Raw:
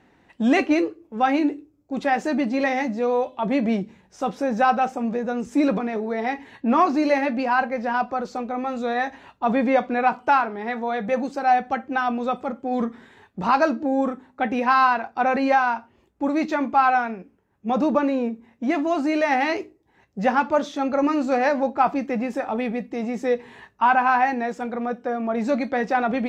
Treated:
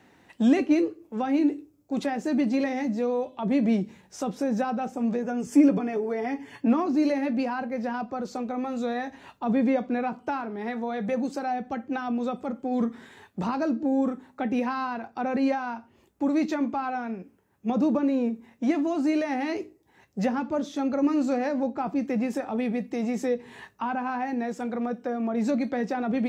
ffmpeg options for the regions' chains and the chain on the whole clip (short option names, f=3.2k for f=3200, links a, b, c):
-filter_complex "[0:a]asettb=1/sr,asplit=3[a][b][c];[a]atrim=end=5.224[d];[b]atrim=start=5.22:end=6.67,asetpts=PTS-STARTPTS,afade=t=in:d=0.004:c=qsin,afade=t=out:st=1.446:d=0.004:c=qsin,asuperstop=centerf=3900:order=12:qfactor=6.5,aecho=1:1:7:0.54,atrim=end_sample=63945[e];[c]atrim=start=6.666[f];[d][e]acrossfade=d=0.004:c1=hsin:c2=qsin[g];[g][f]acrossfade=d=0.004:c1=qsin:c2=hsin,highpass=67,highshelf=f=5.5k:g=10.5,acrossover=split=430[h][i];[i]acompressor=threshold=-36dB:ratio=3[j];[h][j]amix=inputs=2:normalize=0"